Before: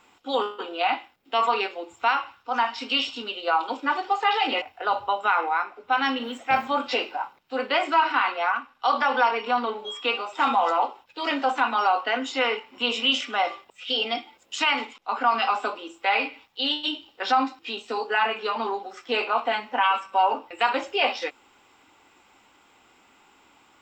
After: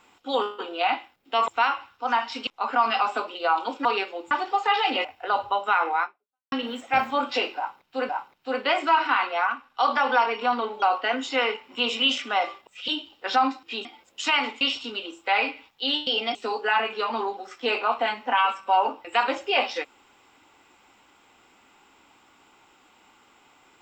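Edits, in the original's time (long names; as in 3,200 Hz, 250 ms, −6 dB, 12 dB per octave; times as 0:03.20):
0:01.48–0:01.94: move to 0:03.88
0:02.93–0:03.38: swap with 0:14.95–0:15.83
0:05.60–0:06.09: fade out exponential
0:07.14–0:07.66: repeat, 2 plays
0:09.87–0:11.85: remove
0:13.91–0:14.19: swap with 0:16.84–0:17.81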